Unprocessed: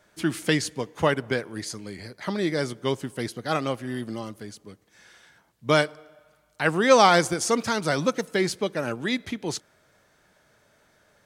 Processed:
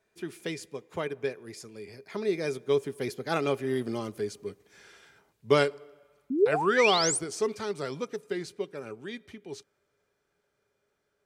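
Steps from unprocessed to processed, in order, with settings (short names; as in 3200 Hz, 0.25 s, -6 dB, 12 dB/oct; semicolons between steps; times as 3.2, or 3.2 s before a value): Doppler pass-by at 4.31, 20 m/s, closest 17 m; painted sound rise, 6.3–7.19, 240–10000 Hz -29 dBFS; small resonant body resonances 410/2400 Hz, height 14 dB, ringing for 85 ms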